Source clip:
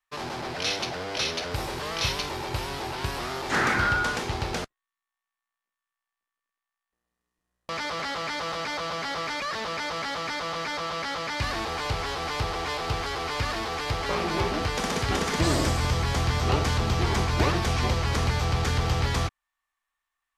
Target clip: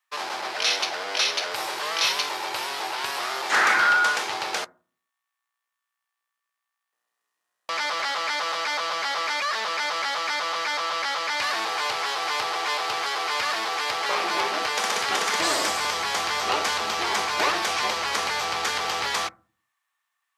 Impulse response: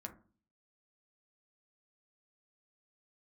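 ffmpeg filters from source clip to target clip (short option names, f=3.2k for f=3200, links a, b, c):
-filter_complex "[0:a]highpass=720,asplit=2[a][b];[1:a]atrim=start_sample=2205,lowshelf=f=300:g=11.5[c];[b][c]afir=irnorm=-1:irlink=0,volume=-8.5dB[d];[a][d]amix=inputs=2:normalize=0,volume=4dB"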